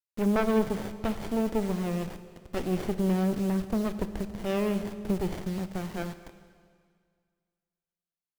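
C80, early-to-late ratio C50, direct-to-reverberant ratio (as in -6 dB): 12.5 dB, 11.5 dB, 10.0 dB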